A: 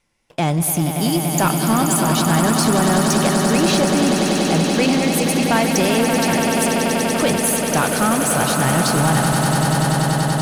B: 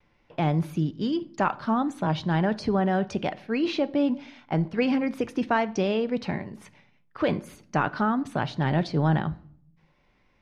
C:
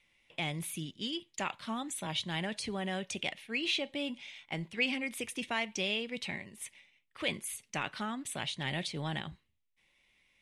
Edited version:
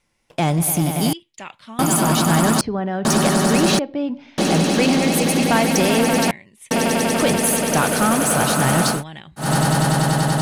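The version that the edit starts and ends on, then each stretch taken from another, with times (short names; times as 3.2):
A
1.13–1.79 from C
2.61–3.05 from B
3.79–4.38 from B
6.31–6.71 from C
8.96–9.44 from C, crossfade 0.16 s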